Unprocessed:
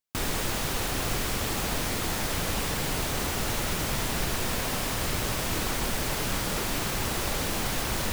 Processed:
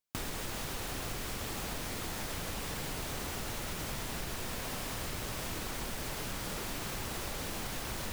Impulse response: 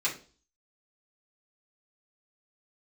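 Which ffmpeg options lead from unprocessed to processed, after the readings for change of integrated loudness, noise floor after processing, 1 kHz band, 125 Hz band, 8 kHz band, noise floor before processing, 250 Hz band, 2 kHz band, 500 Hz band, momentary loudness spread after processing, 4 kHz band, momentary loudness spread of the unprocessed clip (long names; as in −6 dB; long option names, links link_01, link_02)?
−9.5 dB, −40 dBFS, −9.5 dB, −9.5 dB, −9.5 dB, −31 dBFS, −9.5 dB, −9.5 dB, −9.5 dB, 0 LU, −9.5 dB, 0 LU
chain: -af "acompressor=threshold=-34dB:ratio=5,volume=-1.5dB"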